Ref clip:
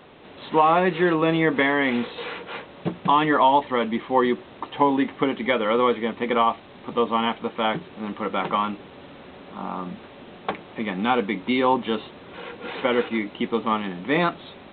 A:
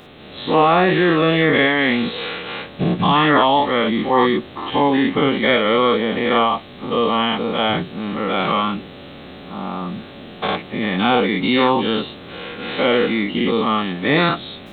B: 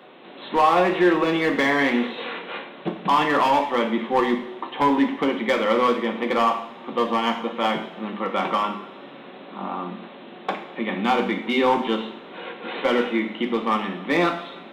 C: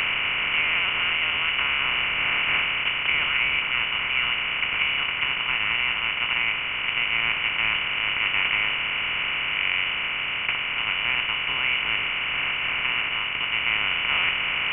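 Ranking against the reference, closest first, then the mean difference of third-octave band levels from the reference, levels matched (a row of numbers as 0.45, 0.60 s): A, B, C; 3.5, 5.0, 9.0 dB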